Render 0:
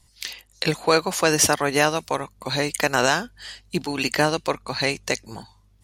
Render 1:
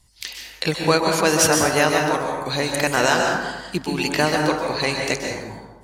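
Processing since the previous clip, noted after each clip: plate-style reverb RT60 1.2 s, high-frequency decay 0.45×, pre-delay 115 ms, DRR 1 dB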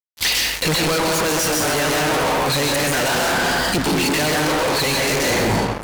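fuzz box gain 42 dB, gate -45 dBFS; gain riding 0.5 s; trim -4.5 dB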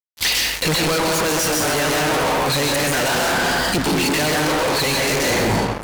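no audible change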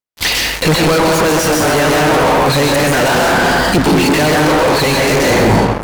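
treble shelf 2.1 kHz -7.5 dB; trim +9 dB

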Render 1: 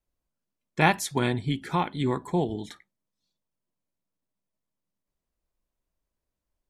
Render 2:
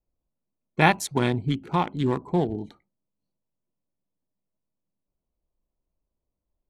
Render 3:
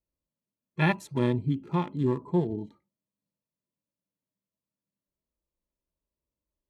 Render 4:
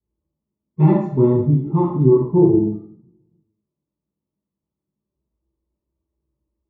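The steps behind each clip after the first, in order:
local Wiener filter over 25 samples; trim +2.5 dB
comb of notches 750 Hz; harmonic-percussive split percussive -15 dB
Savitzky-Golay filter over 65 samples; reverberation RT60 0.60 s, pre-delay 3 ms, DRR -9.5 dB; trim -8.5 dB

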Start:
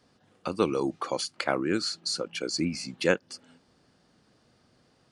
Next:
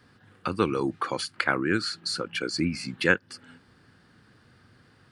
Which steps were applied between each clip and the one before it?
fifteen-band graphic EQ 100 Hz +8 dB, 630 Hz -7 dB, 1.6 kHz +8 dB, 6.3 kHz -8 dB; in parallel at -2 dB: compression, threshold -36 dBFS, peak gain reduction 18.5 dB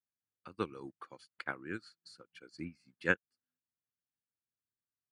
upward expansion 2.5:1, over -45 dBFS; trim -7 dB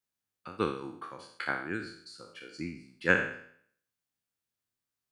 spectral sustain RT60 0.61 s; trim +4 dB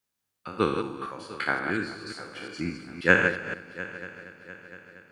chunks repeated in reverse 177 ms, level -6.5 dB; multi-head delay 233 ms, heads first and third, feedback 61%, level -18 dB; trim +5.5 dB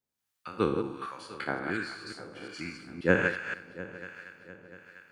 harmonic tremolo 1.3 Hz, depth 70%, crossover 840 Hz

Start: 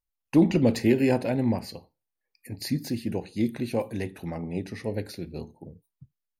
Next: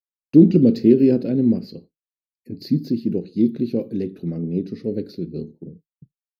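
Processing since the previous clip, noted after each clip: expander -45 dBFS; FFT filter 100 Hz 0 dB, 160 Hz +13 dB, 420 Hz +12 dB, 920 Hz -17 dB, 1.3 kHz -2 dB, 1.9 kHz -10 dB, 4.6 kHz +3 dB, 8.8 kHz -21 dB, 13 kHz -5 dB; trim -4 dB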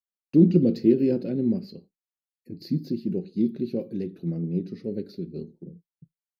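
flange 0.58 Hz, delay 5 ms, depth 1 ms, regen +60%; trim -1.5 dB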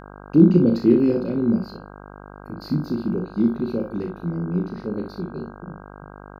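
on a send: early reflections 34 ms -6.5 dB, 61 ms -9 dB; on the sum: mains buzz 50 Hz, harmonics 32, -44 dBFS -2 dB/octave; trim +2.5 dB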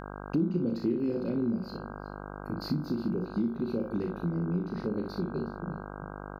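compression 4:1, threshold -28 dBFS, peak gain reduction 17 dB; delay 366 ms -18.5 dB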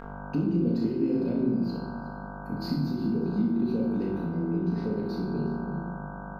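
simulated room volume 710 m³, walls mixed, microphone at 1.7 m; trim -2 dB

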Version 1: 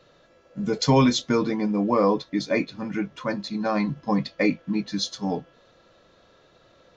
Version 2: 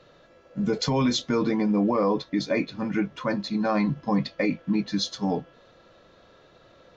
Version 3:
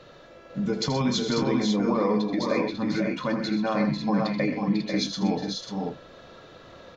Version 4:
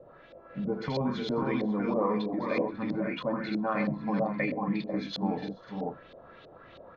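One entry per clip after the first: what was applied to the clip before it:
treble shelf 6.6 kHz -8.5 dB; peak limiter -17.5 dBFS, peak gain reduction 10.5 dB; trim +2.5 dB
compression 1.5:1, threshold -43 dBFS, peak gain reduction 8.5 dB; on a send: multi-tap echo 81/126/496/543 ms -10.5/-10.5/-6/-6 dB; on the sum: trim +5.5 dB
LFO low-pass saw up 3.1 Hz 530–3900 Hz; trim -6 dB

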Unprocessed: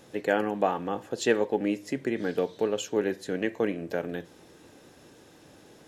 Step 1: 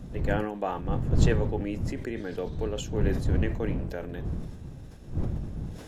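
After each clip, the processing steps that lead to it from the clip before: wind noise 130 Hz -24 dBFS; decay stretcher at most 57 dB/s; trim -6 dB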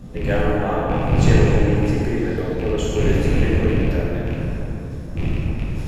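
rattle on loud lows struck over -27 dBFS, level -27 dBFS; plate-style reverb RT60 3.2 s, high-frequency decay 0.5×, DRR -6.5 dB; trim +2 dB

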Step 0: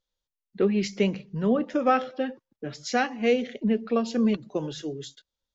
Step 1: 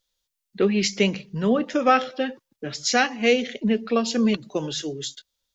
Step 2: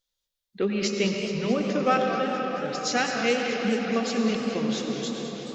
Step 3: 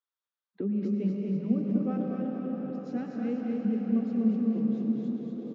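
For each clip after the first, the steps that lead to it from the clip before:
treble shelf 2 kHz +10.5 dB; trim +2 dB
reverberation RT60 5.0 s, pre-delay 86 ms, DRR 2 dB; modulated delay 214 ms, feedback 79%, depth 181 cents, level -12 dB; trim -5.5 dB
auto-wah 220–1200 Hz, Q 2.5, down, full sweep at -29.5 dBFS; feedback delay 244 ms, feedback 53%, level -4 dB

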